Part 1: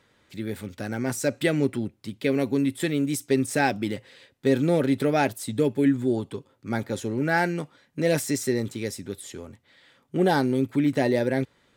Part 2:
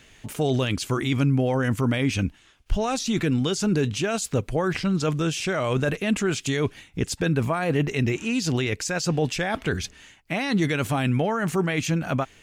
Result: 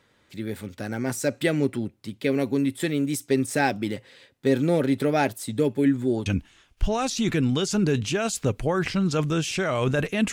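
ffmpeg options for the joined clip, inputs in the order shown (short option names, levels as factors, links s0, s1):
-filter_complex "[0:a]apad=whole_dur=10.32,atrim=end=10.32,atrim=end=6.262[s0];[1:a]atrim=start=2.148:end=6.21[s1];[s0][s1]acrossfade=d=0.004:c1=hsin:c2=hsin"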